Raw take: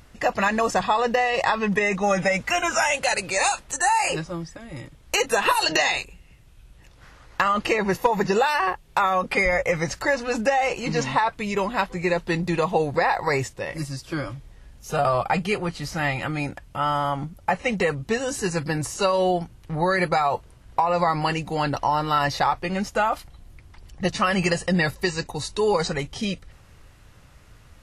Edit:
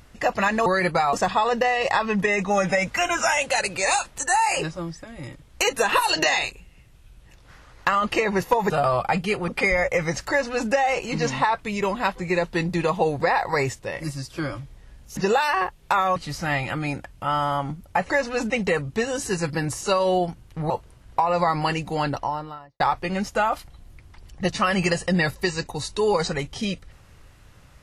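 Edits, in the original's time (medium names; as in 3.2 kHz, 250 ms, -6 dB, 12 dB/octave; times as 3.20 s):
8.23–9.22 s: swap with 14.91–15.69 s
10.04–10.44 s: copy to 17.63 s
19.83–20.30 s: move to 0.66 s
21.54–22.40 s: studio fade out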